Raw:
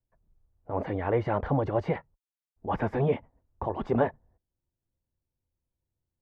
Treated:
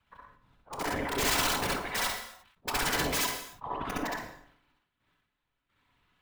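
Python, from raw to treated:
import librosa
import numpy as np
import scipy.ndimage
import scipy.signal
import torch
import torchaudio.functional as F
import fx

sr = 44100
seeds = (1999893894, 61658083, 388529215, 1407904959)

p1 = scipy.ndimage.median_filter(x, 9, mode='constant')
p2 = fx.highpass(p1, sr, hz=74.0, slope=6)
p3 = fx.band_shelf(p2, sr, hz=1900.0, db=14.0, octaves=2.5)
p4 = fx.auto_swell(p3, sr, attack_ms=124.0)
p5 = fx.over_compress(p4, sr, threshold_db=-31.0, ratio=-0.5)
p6 = fx.step_gate(p5, sr, bpm=108, pattern='x..x....xxx', floor_db=-12.0, edge_ms=4.5)
p7 = (np.mod(10.0 ** (29.5 / 20.0) * p6 + 1.0, 2.0) - 1.0) / 10.0 ** (29.5 / 20.0)
p8 = fx.whisperise(p7, sr, seeds[0])
p9 = p8 + fx.echo_multitap(p8, sr, ms=(62, 65, 69, 117), db=(-3.5, -3.5, -3.5, -12.0), dry=0)
p10 = fx.rev_gated(p9, sr, seeds[1], gate_ms=320, shape='falling', drr_db=10.5)
p11 = fx.sustainer(p10, sr, db_per_s=79.0)
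y = F.gain(torch.from_numpy(p11), 4.5).numpy()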